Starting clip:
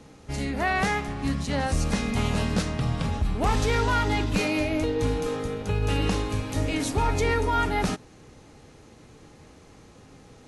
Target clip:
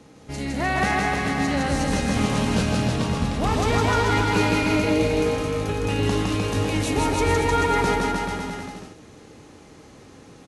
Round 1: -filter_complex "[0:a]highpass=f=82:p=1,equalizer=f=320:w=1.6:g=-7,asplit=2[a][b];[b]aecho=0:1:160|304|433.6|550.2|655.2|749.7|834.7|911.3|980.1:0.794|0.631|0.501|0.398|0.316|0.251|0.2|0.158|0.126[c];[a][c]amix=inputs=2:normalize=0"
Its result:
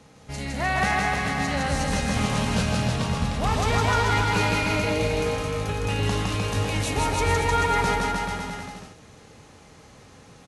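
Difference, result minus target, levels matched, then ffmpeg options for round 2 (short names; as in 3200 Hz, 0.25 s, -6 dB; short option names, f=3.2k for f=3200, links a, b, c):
250 Hz band -3.5 dB
-filter_complex "[0:a]highpass=f=82:p=1,equalizer=f=320:w=1.6:g=2,asplit=2[a][b];[b]aecho=0:1:160|304|433.6|550.2|655.2|749.7|834.7|911.3|980.1:0.794|0.631|0.501|0.398|0.316|0.251|0.2|0.158|0.126[c];[a][c]amix=inputs=2:normalize=0"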